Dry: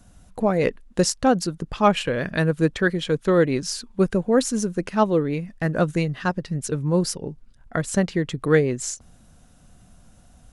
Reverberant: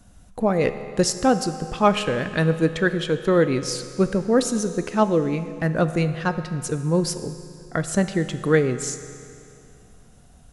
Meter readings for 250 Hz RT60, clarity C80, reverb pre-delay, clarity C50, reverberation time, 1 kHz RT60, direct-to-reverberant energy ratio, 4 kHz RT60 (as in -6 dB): 2.6 s, 11.5 dB, 14 ms, 11.0 dB, 2.6 s, 2.6 s, 10.0 dB, 2.5 s